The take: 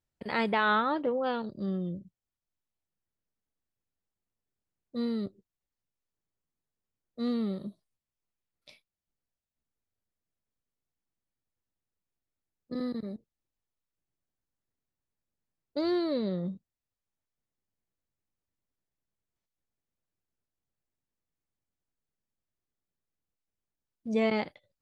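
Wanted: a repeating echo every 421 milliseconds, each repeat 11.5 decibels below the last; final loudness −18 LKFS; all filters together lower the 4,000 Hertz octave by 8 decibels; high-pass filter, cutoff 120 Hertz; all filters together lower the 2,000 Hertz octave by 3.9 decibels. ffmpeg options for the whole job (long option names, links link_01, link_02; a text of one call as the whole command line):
ffmpeg -i in.wav -af "highpass=120,equalizer=frequency=2000:width_type=o:gain=-4,equalizer=frequency=4000:width_type=o:gain=-8.5,aecho=1:1:421|842|1263:0.266|0.0718|0.0194,volume=15dB" out.wav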